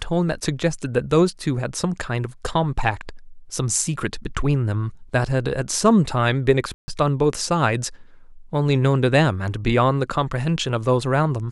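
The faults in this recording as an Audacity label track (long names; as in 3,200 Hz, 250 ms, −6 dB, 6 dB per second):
6.740000	6.880000	drop-out 140 ms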